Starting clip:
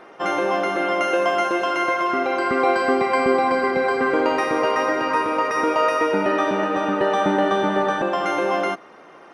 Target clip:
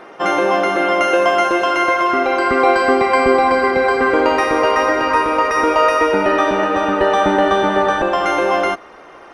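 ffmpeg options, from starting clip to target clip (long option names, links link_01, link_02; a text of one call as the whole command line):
ffmpeg -i in.wav -af "asubboost=boost=9.5:cutoff=54,volume=6dB" out.wav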